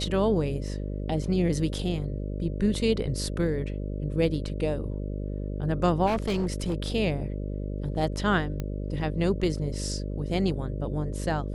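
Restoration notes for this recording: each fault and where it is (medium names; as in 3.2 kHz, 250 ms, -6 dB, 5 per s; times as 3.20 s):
buzz 50 Hz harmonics 12 -32 dBFS
6.06–6.90 s: clipped -22.5 dBFS
8.60 s: pop -19 dBFS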